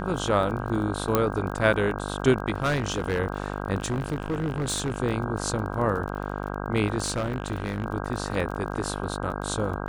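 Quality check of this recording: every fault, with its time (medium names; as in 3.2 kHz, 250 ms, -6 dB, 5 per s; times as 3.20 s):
buzz 50 Hz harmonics 32 -32 dBFS
crackle 23 per s -33 dBFS
1.15 s: pop -7 dBFS
2.56–3.20 s: clipped -20 dBFS
3.77–4.98 s: clipped -23 dBFS
7.02–7.84 s: clipped -22.5 dBFS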